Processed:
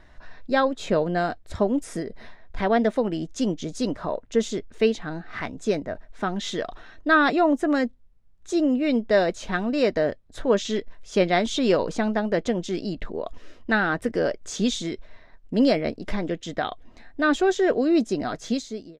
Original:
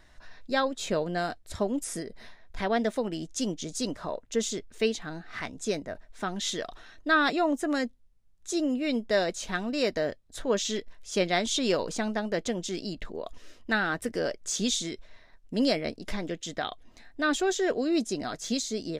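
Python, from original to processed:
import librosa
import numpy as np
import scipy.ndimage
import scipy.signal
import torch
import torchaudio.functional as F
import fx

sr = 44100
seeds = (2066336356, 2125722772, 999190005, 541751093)

y = fx.fade_out_tail(x, sr, length_s=0.55)
y = fx.lowpass(y, sr, hz=1900.0, slope=6)
y = F.gain(torch.from_numpy(y), 6.5).numpy()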